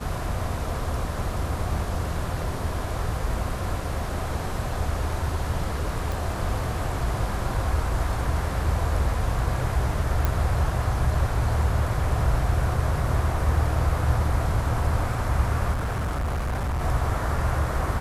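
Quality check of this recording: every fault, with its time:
6.12 s: pop
10.25 s: pop
15.72–16.82 s: clipped -23.5 dBFS

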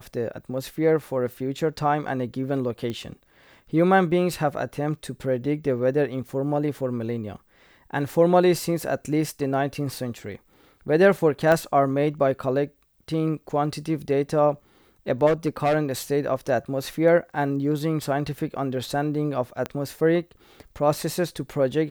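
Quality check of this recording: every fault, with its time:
2.90 s: pop -19 dBFS
11.52 s: pop -10 dBFS
15.26–15.76 s: clipped -16.5 dBFS
19.66 s: pop -14 dBFS

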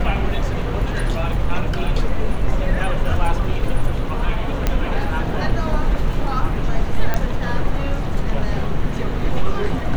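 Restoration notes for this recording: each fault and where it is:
4.67 s: pop -5 dBFS
7.14 s: pop -7 dBFS

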